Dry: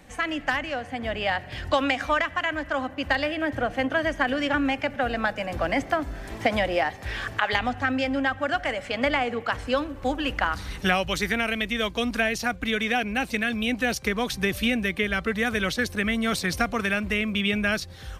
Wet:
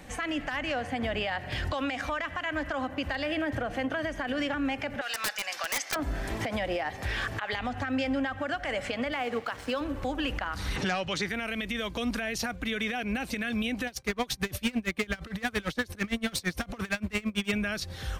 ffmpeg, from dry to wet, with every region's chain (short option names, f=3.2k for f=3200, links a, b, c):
-filter_complex "[0:a]asettb=1/sr,asplit=3[a][b][c];[a]atrim=end=5.014[d];[b]atrim=start=5.01:end=5.96,asetpts=PTS-STARTPTS,afade=t=in:d=0.004:c=qsin,afade=t=out:st=0.946:d=0.004:c=qsin,highpass=1.4k,equalizer=f=5.5k:t=o:w=1:g=11.5,aeval=exprs='(mod(11.9*val(0)+1,2)-1)/11.9':c=same[e];[c]atrim=start=5.956[f];[d][e]acrossfade=d=0.004:c1=hsin:c2=qsin[g];[g][f]acrossfade=d=0.004:c1=qsin:c2=hsin,asettb=1/sr,asplit=3[h][i][j];[h]atrim=end=9.124[k];[i]atrim=start=9.12:end=9.81,asetpts=PTS-STARTPTS,afade=t=in:d=0.004:c=qsin,afade=t=out:st=0.686:d=0.004:c=qsin,highpass=f=180:p=1,aeval=exprs='sgn(val(0))*max(abs(val(0))-0.00473,0)':c=same[l];[j]atrim=start=9.806[m];[k][l]acrossfade=d=0.004:c1=hsin:c2=qsin[n];[n][m]acrossfade=d=0.004:c1=qsin:c2=hsin,asettb=1/sr,asplit=3[o][p][q];[o]atrim=end=10.764[r];[p]atrim=start=10.76:end=11.29,asetpts=PTS-STARTPTS,afade=t=in:d=0.004:c=qsin,afade=t=out:st=0.526:d=0.004:c=qsin,highpass=120,lowpass=6.1k,aeval=exprs='0.398*sin(PI/2*1.78*val(0)/0.398)':c=same[s];[q]atrim=start=11.286[t];[r][s]acrossfade=d=0.004:c1=hsin:c2=qsin[u];[u][t]acrossfade=d=0.004:c1=qsin:c2=hsin,asettb=1/sr,asplit=3[v][w][x];[v]atrim=end=13.874[y];[w]atrim=start=13.87:end=17.52,asetpts=PTS-STARTPTS,afade=t=in:d=0.004:c=qsin,afade=t=out:st=3.646:d=0.004:c=qsin,asoftclip=type=hard:threshold=-23dB,aeval=exprs='val(0)*pow(10,-27*(0.5-0.5*cos(2*PI*8.8*n/s))/20)':c=same[z];[x]atrim=start=17.516[aa];[y][z]acrossfade=d=0.004:c1=hsin:c2=qsin[ab];[ab][aa]acrossfade=d=0.004:c1=qsin:c2=hsin,acompressor=threshold=-27dB:ratio=6,alimiter=level_in=1.5dB:limit=-24dB:level=0:latency=1:release=88,volume=-1.5dB,volume=3.5dB"